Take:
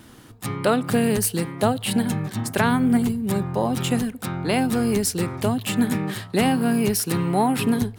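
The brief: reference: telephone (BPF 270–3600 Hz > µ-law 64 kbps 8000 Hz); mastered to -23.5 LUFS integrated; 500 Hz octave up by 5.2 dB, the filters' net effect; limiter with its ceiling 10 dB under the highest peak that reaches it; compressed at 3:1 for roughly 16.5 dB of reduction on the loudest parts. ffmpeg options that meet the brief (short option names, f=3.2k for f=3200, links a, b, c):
-af "equalizer=f=500:t=o:g=7,acompressor=threshold=-35dB:ratio=3,alimiter=level_in=4dB:limit=-24dB:level=0:latency=1,volume=-4dB,highpass=270,lowpass=3.6k,volume=17dB" -ar 8000 -c:a pcm_mulaw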